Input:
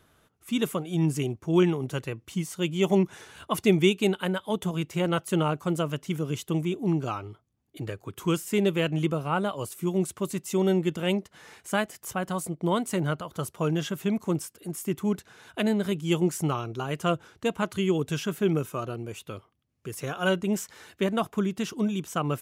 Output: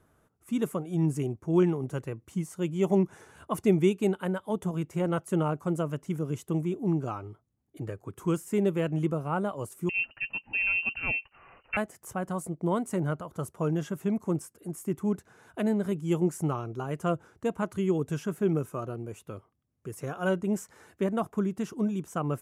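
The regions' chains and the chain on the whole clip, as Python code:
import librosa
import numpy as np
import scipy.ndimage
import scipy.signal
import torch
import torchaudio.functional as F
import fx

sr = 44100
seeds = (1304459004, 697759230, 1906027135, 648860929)

y = fx.chain(x, sr, fx.low_shelf(hz=320.0, db=11.5),
    fx.freq_invert(carrier_hz=2900), at=(9.89, 11.77))
y = scipy.signal.sosfilt(scipy.signal.butter(2, 11000.0, 'lowpass', fs=sr, output='sos'), y)
y = fx.peak_eq(y, sr, hz=3600.0, db=-13.5, octaves=1.6)
y = y * 10.0 ** (-1.5 / 20.0)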